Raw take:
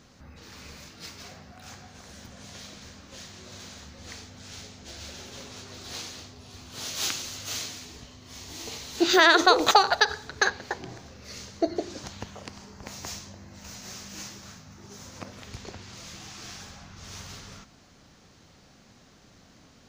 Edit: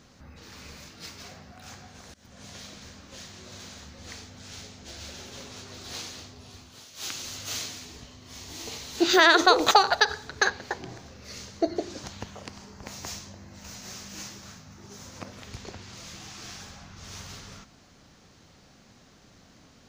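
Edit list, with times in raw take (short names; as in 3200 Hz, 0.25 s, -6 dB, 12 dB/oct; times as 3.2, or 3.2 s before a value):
2.14–2.45 fade in, from -23.5 dB
6.48–7.3 dip -15.5 dB, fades 0.38 s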